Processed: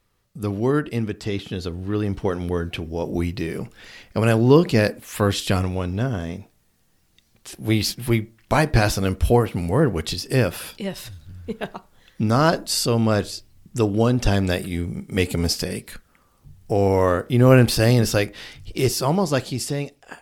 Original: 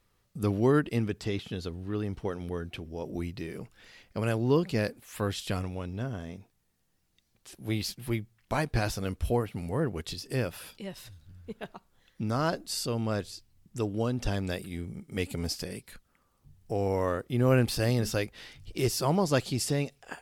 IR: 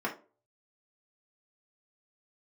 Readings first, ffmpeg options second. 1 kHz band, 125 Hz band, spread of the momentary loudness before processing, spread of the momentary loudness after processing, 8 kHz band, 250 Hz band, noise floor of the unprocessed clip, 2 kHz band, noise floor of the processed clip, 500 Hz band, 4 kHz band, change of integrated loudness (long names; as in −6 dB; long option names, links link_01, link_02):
+9.5 dB, +10.0 dB, 16 LU, 15 LU, +9.0 dB, +9.5 dB, −72 dBFS, +10.0 dB, −62 dBFS, +9.5 dB, +10.0 dB, +9.5 dB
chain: -filter_complex "[0:a]asplit=2[link_01][link_02];[1:a]atrim=start_sample=2205,adelay=28[link_03];[link_02][link_03]afir=irnorm=-1:irlink=0,volume=-25dB[link_04];[link_01][link_04]amix=inputs=2:normalize=0,dynaudnorm=framelen=190:gausssize=17:maxgain=8.5dB,volume=2.5dB"